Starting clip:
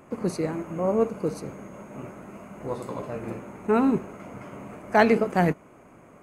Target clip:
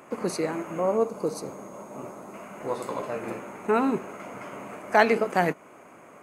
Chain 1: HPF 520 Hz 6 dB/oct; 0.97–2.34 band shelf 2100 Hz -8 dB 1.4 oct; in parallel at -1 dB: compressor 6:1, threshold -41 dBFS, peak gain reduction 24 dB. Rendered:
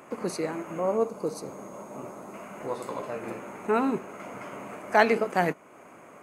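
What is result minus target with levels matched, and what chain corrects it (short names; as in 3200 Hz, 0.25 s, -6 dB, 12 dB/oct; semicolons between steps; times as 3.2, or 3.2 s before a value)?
compressor: peak gain reduction +9 dB
HPF 520 Hz 6 dB/oct; 0.97–2.34 band shelf 2100 Hz -8 dB 1.4 oct; in parallel at -1 dB: compressor 6:1, threshold -30 dBFS, peak gain reduction 15 dB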